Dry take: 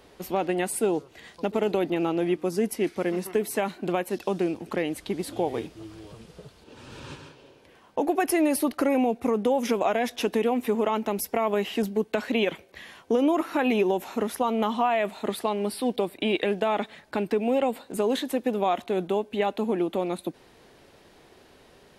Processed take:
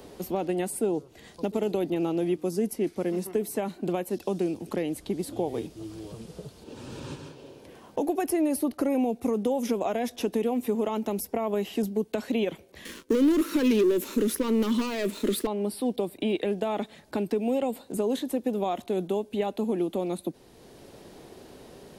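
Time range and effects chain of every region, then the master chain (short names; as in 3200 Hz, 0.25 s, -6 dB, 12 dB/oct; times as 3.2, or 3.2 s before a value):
12.85–15.47 sample leveller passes 3 + fixed phaser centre 310 Hz, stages 4
whole clip: bell 1800 Hz -10 dB 2.6 oct; three-band squash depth 40%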